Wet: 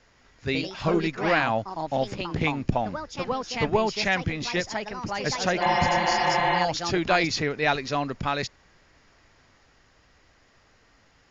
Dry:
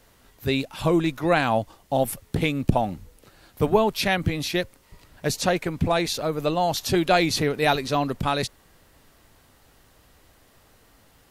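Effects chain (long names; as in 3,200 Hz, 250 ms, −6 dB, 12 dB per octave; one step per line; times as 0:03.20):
delay with pitch and tempo change per echo 150 ms, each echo +3 semitones, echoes 2, each echo −6 dB
Chebyshev low-pass with heavy ripple 7,000 Hz, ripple 6 dB
healed spectral selection 0:05.64–0:06.56, 260–4,200 Hz after
level +1.5 dB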